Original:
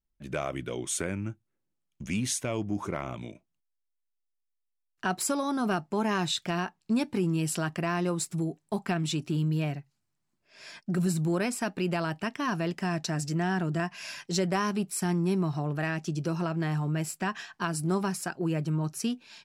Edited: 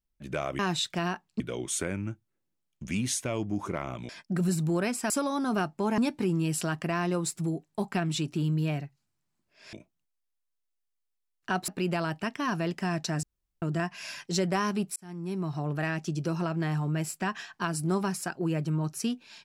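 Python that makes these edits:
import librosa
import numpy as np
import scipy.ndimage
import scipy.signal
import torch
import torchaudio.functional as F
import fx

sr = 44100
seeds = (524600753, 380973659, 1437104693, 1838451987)

y = fx.edit(x, sr, fx.swap(start_s=3.28, length_s=1.95, other_s=10.67, other_length_s=1.01),
    fx.move(start_s=6.11, length_s=0.81, to_s=0.59),
    fx.room_tone_fill(start_s=13.23, length_s=0.39),
    fx.fade_in_span(start_s=14.96, length_s=0.75), tone=tone)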